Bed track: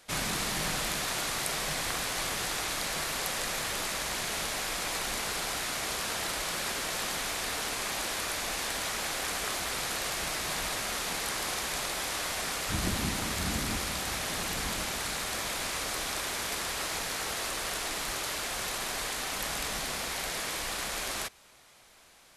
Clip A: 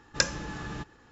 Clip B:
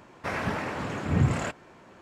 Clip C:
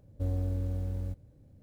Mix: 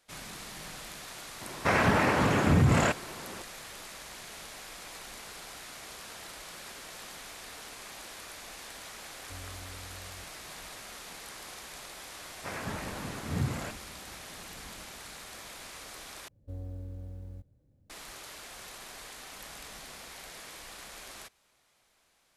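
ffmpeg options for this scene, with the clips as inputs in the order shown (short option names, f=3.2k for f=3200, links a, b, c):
-filter_complex "[2:a]asplit=2[a][b];[3:a]asplit=2[c][d];[0:a]volume=-12dB[e];[a]alimiter=level_in=21dB:limit=-1dB:release=50:level=0:latency=1[f];[e]asplit=2[g][h];[g]atrim=end=16.284[i];[d]atrim=end=1.62,asetpts=PTS-STARTPTS,volume=-9.5dB[j];[h]atrim=start=17.896[k];[f]atrim=end=2.01,asetpts=PTS-STARTPTS,volume=-13.5dB,afade=t=in:d=0.004:c=hsin,afade=t=out:st=2.006:d=0.004:c=hsin,adelay=1410[l];[c]atrim=end=1.62,asetpts=PTS-STARTPTS,volume=-16dB,afade=t=in:d=0.004:c=hsin,afade=t=out:st=1.616:d=0.004:c=hsin,adelay=9100[m];[b]atrim=end=2.01,asetpts=PTS-STARTPTS,volume=-8dB,afade=t=in:d=0.004:c=hsin,afade=t=out:st=2.006:d=0.004:c=hsin,adelay=538020S[n];[i][j]acrossfade=d=0.004:c1=hsin:c2=hsin[o];[o][k]acrossfade=d=0.004:c1=hsin:c2=hsin[p];[p][l][m][n]amix=inputs=4:normalize=0"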